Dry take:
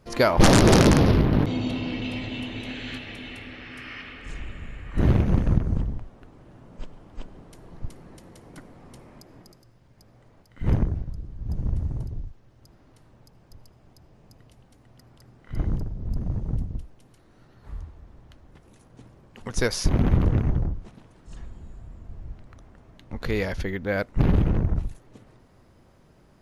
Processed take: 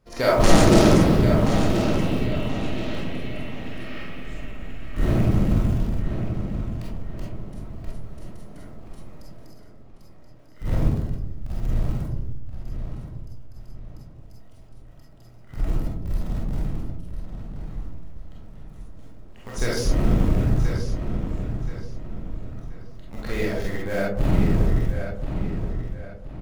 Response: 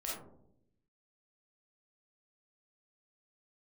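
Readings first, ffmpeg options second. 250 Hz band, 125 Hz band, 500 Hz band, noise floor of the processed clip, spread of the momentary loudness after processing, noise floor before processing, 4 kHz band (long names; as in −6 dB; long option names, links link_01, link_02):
+2.0 dB, +1.0 dB, +2.5 dB, −44 dBFS, 20 LU, −56 dBFS, −1.0 dB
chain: -filter_complex "[0:a]asplit=2[link_01][link_02];[link_02]acrusher=bits=5:dc=4:mix=0:aa=0.000001,volume=-7dB[link_03];[link_01][link_03]amix=inputs=2:normalize=0,asplit=2[link_04][link_05];[link_05]adelay=1028,lowpass=frequency=4900:poles=1,volume=-8dB,asplit=2[link_06][link_07];[link_07]adelay=1028,lowpass=frequency=4900:poles=1,volume=0.37,asplit=2[link_08][link_09];[link_09]adelay=1028,lowpass=frequency=4900:poles=1,volume=0.37,asplit=2[link_10][link_11];[link_11]adelay=1028,lowpass=frequency=4900:poles=1,volume=0.37[link_12];[link_04][link_06][link_08][link_10][link_12]amix=inputs=5:normalize=0[link_13];[1:a]atrim=start_sample=2205[link_14];[link_13][link_14]afir=irnorm=-1:irlink=0,volume=-4.5dB"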